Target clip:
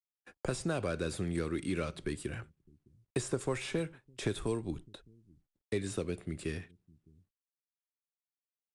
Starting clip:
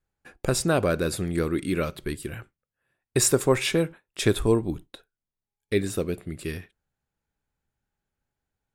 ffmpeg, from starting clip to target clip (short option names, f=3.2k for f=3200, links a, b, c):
-filter_complex "[0:a]agate=range=-32dB:threshold=-47dB:ratio=16:detection=peak,acrossover=split=99|1800[a][b][c];[a]acompressor=threshold=-41dB:ratio=4[d];[b]acompressor=threshold=-28dB:ratio=4[e];[c]acompressor=threshold=-32dB:ratio=4[f];[d][e][f]amix=inputs=3:normalize=0,acrossover=split=300|1200[g][h][i];[g]aecho=1:1:610:0.0841[j];[i]asoftclip=type=tanh:threshold=-35dB[k];[j][h][k]amix=inputs=3:normalize=0,volume=-3.5dB" -ar 22050 -c:a adpcm_ima_wav